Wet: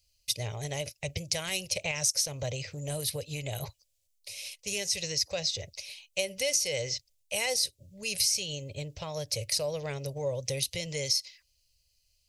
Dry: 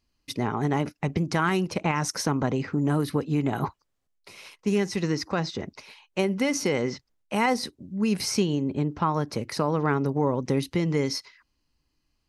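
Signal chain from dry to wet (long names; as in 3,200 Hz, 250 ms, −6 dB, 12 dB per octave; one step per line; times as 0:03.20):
drawn EQ curve 110 Hz 0 dB, 230 Hz −26 dB, 340 Hz −23 dB, 570 Hz +1 dB, 840 Hz −17 dB, 1,300 Hz −22 dB, 2,400 Hz +2 dB, 4,500 Hz +8 dB, 7,400 Hz +12 dB
downward compressor 6 to 1, threshold −24 dBFS, peak gain reduction 8.5 dB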